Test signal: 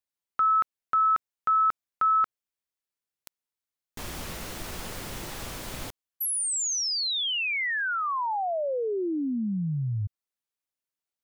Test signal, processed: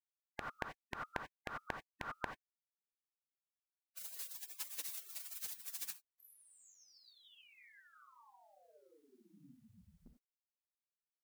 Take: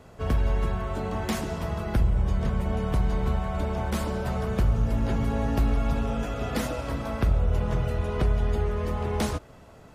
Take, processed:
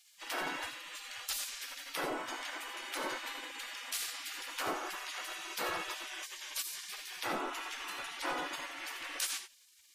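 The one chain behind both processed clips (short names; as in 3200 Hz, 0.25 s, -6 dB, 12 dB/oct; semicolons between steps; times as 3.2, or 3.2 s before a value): dynamic EQ 200 Hz, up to +3 dB, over -41 dBFS, Q 2.1; non-linear reverb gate 0.11 s rising, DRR 6.5 dB; spectral gate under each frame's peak -30 dB weak; gain +5 dB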